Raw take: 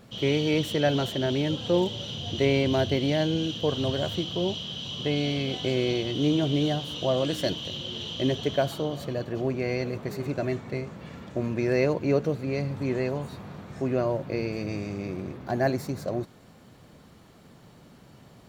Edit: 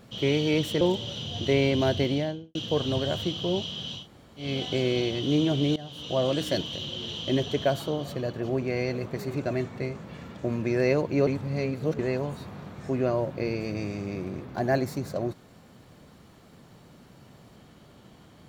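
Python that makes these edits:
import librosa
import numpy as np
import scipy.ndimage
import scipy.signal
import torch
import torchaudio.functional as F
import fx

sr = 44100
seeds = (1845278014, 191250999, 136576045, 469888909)

y = fx.studio_fade_out(x, sr, start_s=2.96, length_s=0.51)
y = fx.edit(y, sr, fx.cut(start_s=0.81, length_s=0.92),
    fx.room_tone_fill(start_s=4.92, length_s=0.44, crossfade_s=0.16),
    fx.fade_in_from(start_s=6.68, length_s=0.46, floor_db=-19.0),
    fx.reverse_span(start_s=12.19, length_s=0.72), tone=tone)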